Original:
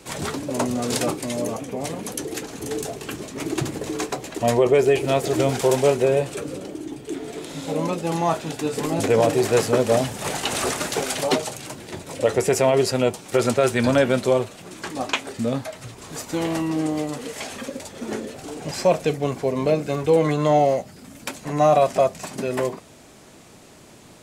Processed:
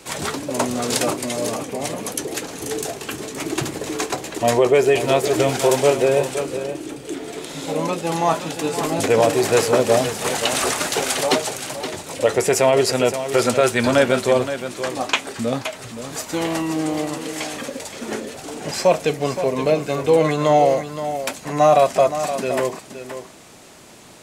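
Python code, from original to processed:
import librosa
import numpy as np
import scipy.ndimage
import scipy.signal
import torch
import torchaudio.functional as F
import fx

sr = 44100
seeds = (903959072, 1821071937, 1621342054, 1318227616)

y = fx.low_shelf(x, sr, hz=380.0, db=-6.5)
y = y + 10.0 ** (-10.5 / 20.0) * np.pad(y, (int(521 * sr / 1000.0), 0))[:len(y)]
y = y * 10.0 ** (4.5 / 20.0)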